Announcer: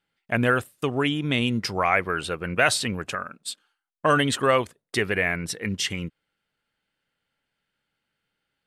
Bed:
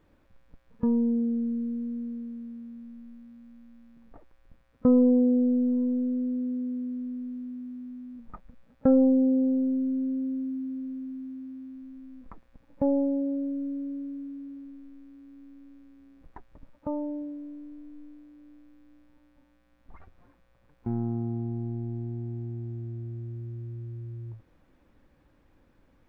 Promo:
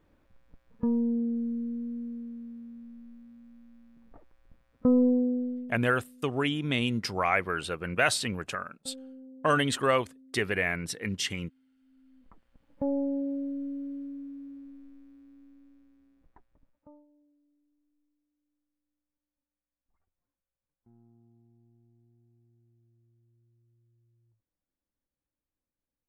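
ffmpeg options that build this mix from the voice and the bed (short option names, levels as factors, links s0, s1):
-filter_complex "[0:a]adelay=5400,volume=0.596[s0];[1:a]volume=10.6,afade=t=out:st=5.05:d=0.75:silence=0.0668344,afade=t=in:st=11.78:d=1.39:silence=0.0707946,afade=t=out:st=14.83:d=2.23:silence=0.0398107[s1];[s0][s1]amix=inputs=2:normalize=0"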